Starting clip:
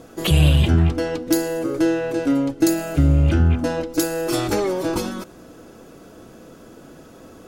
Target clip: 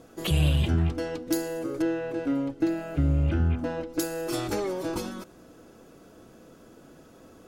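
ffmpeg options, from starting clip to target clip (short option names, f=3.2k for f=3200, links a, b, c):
-filter_complex "[0:a]asettb=1/sr,asplit=3[a][b][c];[a]atrim=end=1.824[d];[b]atrim=start=1.82:end=3.99,asetpts=PTS-STARTPTS,afade=t=in:d=0.004:c=qsin,afade=t=out:st=2.166:d=0.004:c=qsin,acrossover=split=3400[e][f];[f]acompressor=threshold=-53dB:ratio=4:attack=1:release=60[g];[e][g]amix=inputs=2:normalize=0[h];[c]atrim=start=3.986[i];[d][h]acrossfade=d=0.004:c1=hsin:c2=qsin[j];[j][i]acrossfade=d=0.004:c1=qsin:c2=hsin,volume=-8dB"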